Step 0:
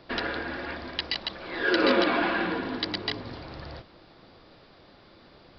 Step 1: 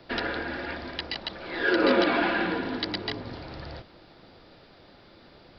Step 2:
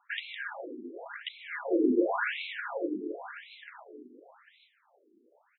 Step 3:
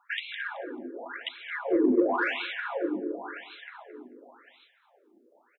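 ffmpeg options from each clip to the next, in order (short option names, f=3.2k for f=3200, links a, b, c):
-filter_complex "[0:a]bandreject=f=1.1k:w=12,acrossover=split=310|880|1600[a][b][c][d];[d]alimiter=limit=-18dB:level=0:latency=1:release=418[e];[a][b][c][e]amix=inputs=4:normalize=0,volume=1dB"
-af "agate=range=-7dB:threshold=-43dB:ratio=16:detection=peak,aecho=1:1:850:0.335,afftfilt=real='re*between(b*sr/1024,300*pow(3000/300,0.5+0.5*sin(2*PI*0.92*pts/sr))/1.41,300*pow(3000/300,0.5+0.5*sin(2*PI*0.92*pts/sr))*1.41)':imag='im*between(b*sr/1024,300*pow(3000/300,0.5+0.5*sin(2*PI*0.92*pts/sr))/1.41,300*pow(3000/300,0.5+0.5*sin(2*PI*0.92*pts/sr))*1.41)':win_size=1024:overlap=0.75"
-filter_complex "[0:a]asplit=2[a][b];[b]adelay=219,lowpass=f=2.7k:p=1,volume=-13dB,asplit=2[c][d];[d]adelay=219,lowpass=f=2.7k:p=1,volume=0.18[e];[a][c][e]amix=inputs=3:normalize=0,asplit=2[f][g];[g]asoftclip=type=tanh:threshold=-22.5dB,volume=-7dB[h];[f][h]amix=inputs=2:normalize=0"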